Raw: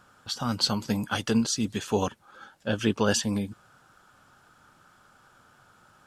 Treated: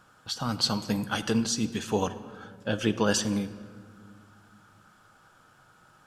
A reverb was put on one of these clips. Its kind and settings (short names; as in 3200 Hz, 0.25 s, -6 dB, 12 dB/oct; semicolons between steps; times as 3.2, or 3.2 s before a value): shoebox room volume 2700 m³, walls mixed, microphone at 0.62 m; gain -1 dB